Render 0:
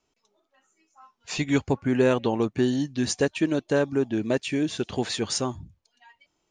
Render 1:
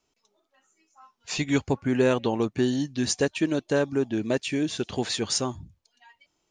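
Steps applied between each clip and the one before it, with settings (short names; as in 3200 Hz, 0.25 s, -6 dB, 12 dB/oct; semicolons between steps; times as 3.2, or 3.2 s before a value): bell 5600 Hz +3 dB 1.7 oct; gain -1 dB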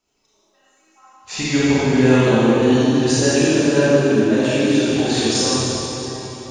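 reverb RT60 3.7 s, pre-delay 25 ms, DRR -10.5 dB; gain -1 dB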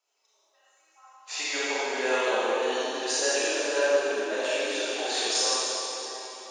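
HPF 500 Hz 24 dB/oct; gain -5 dB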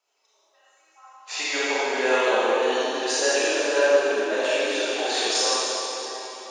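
high shelf 6000 Hz -6.5 dB; gain +5 dB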